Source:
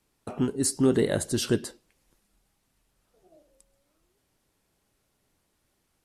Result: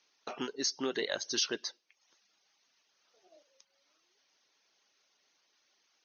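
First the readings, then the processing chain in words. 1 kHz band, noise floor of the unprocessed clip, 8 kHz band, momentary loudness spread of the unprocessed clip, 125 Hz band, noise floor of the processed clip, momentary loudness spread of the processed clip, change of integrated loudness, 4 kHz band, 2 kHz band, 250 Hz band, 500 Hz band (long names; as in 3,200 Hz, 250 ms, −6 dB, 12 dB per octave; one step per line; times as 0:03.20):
−3.5 dB, −74 dBFS, −5.5 dB, 12 LU, −26.5 dB, −76 dBFS, 10 LU, −8.5 dB, +2.5 dB, −1.0 dB, −15.0 dB, −10.5 dB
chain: high-pass filter 310 Hz 12 dB per octave
high-shelf EQ 2,000 Hz +10.5 dB
reverb reduction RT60 0.55 s
linear-phase brick-wall low-pass 6,600 Hz
low-shelf EQ 460 Hz −9.5 dB
downward compressor 2 to 1, threshold −33 dBFS, peak gain reduction 7.5 dB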